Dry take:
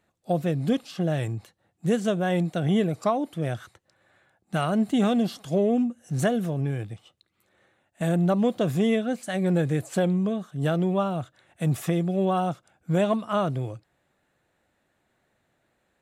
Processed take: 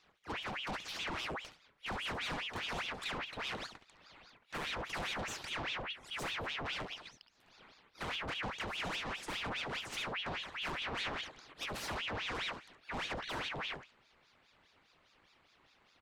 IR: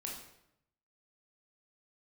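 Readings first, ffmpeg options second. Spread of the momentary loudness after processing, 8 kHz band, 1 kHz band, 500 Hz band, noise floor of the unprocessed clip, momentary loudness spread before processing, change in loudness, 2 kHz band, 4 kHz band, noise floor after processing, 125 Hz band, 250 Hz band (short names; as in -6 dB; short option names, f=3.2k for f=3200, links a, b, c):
8 LU, -7.0 dB, -10.0 dB, -20.0 dB, -73 dBFS, 9 LU, -13.5 dB, -0.5 dB, +1.5 dB, -70 dBFS, -23.5 dB, -24.5 dB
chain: -filter_complex "[0:a]acrossover=split=340 5100:gain=0.2 1 0.112[a][b][c];[a][b][c]amix=inputs=3:normalize=0,acrossover=split=250[d][e];[d]alimiter=level_in=15.5dB:limit=-24dB:level=0:latency=1,volume=-15.5dB[f];[e]acompressor=threshold=-34dB:ratio=6[g];[f][g]amix=inputs=2:normalize=0,asoftclip=type=tanh:threshold=-33dB,aeval=exprs='0.0224*(cos(1*acos(clip(val(0)/0.0224,-1,1)))-cos(1*PI/2))+0.00447*(cos(5*acos(clip(val(0)/0.0224,-1,1)))-cos(5*PI/2))':c=same,aecho=1:1:61|71:0.168|0.266,asplit=2[h][i];[1:a]atrim=start_sample=2205,afade=t=out:st=0.17:d=0.01,atrim=end_sample=7938[j];[i][j]afir=irnorm=-1:irlink=0,volume=-10dB[k];[h][k]amix=inputs=2:normalize=0,aeval=exprs='val(0)*sin(2*PI*1700*n/s+1700*0.85/4.9*sin(2*PI*4.9*n/s))':c=same"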